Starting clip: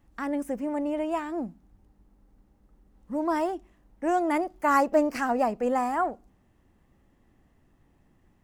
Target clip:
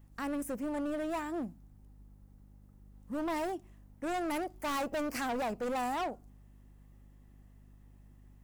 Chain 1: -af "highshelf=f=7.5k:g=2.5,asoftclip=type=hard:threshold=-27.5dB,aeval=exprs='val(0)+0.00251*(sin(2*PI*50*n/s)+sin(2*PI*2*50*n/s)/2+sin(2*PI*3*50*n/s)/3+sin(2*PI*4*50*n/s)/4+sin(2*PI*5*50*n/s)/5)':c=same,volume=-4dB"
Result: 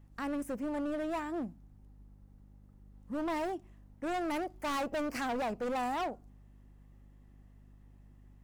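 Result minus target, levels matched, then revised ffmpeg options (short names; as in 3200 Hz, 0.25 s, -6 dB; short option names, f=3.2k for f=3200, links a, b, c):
8000 Hz band -3.5 dB
-af "highshelf=f=7.5k:g=12,asoftclip=type=hard:threshold=-27.5dB,aeval=exprs='val(0)+0.00251*(sin(2*PI*50*n/s)+sin(2*PI*2*50*n/s)/2+sin(2*PI*3*50*n/s)/3+sin(2*PI*4*50*n/s)/4+sin(2*PI*5*50*n/s)/5)':c=same,volume=-4dB"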